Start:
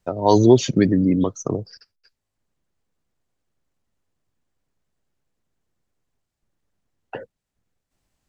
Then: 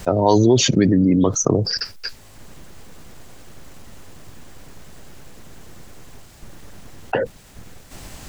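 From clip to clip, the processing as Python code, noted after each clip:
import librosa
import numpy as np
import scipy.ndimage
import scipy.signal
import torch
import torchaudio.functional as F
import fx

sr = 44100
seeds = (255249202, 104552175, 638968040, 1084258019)

y = fx.env_flatten(x, sr, amount_pct=70)
y = y * librosa.db_to_amplitude(-3.5)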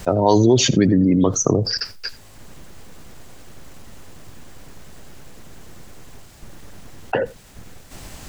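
y = x + 10.0 ** (-21.0 / 20.0) * np.pad(x, (int(83 * sr / 1000.0), 0))[:len(x)]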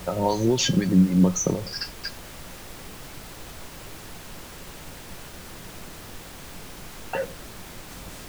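y = fx.harmonic_tremolo(x, sr, hz=4.1, depth_pct=70, crossover_hz=760.0)
y = fx.comb_fb(y, sr, f0_hz=180.0, decay_s=0.17, harmonics='odd', damping=0.0, mix_pct=80)
y = fx.dmg_noise_colour(y, sr, seeds[0], colour='pink', level_db=-47.0)
y = y * librosa.db_to_amplitude(6.0)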